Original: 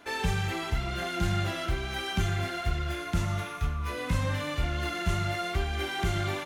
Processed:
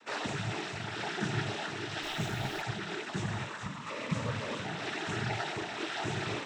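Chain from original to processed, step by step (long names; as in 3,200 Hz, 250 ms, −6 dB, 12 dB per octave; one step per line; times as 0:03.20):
delay with a high-pass on its return 416 ms, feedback 62%, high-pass 1,700 Hz, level −7.5 dB
cochlear-implant simulation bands 12
0:02.02–0:02.61: background noise pink −49 dBFS
level −3 dB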